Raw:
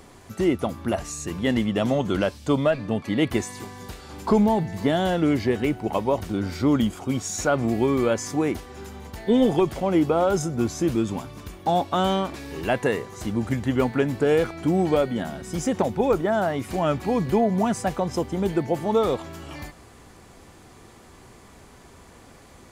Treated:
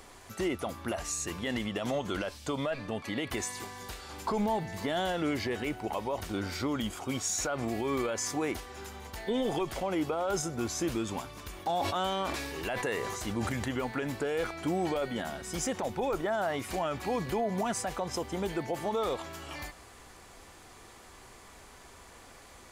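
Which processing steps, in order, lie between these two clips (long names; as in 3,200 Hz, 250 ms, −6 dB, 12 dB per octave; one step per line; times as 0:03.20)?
parametric band 160 Hz −10.5 dB 2.9 octaves
brickwall limiter −22.5 dBFS, peak gain reduction 11 dB
0:11.52–0:13.71: level that may fall only so fast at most 27 dB per second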